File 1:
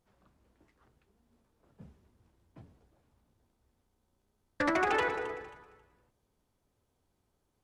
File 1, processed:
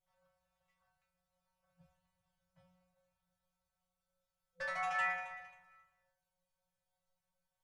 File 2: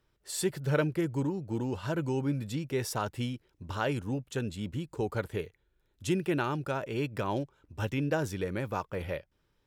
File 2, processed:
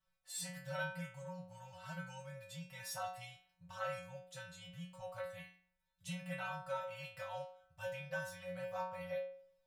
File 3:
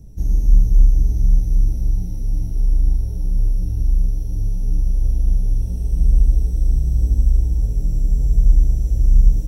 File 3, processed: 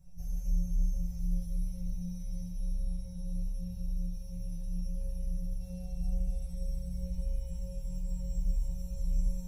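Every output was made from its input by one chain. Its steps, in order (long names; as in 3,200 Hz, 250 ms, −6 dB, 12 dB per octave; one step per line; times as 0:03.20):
brick-wall band-stop 180–510 Hz
stiff-string resonator 180 Hz, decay 0.6 s, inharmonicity 0.002
level +7 dB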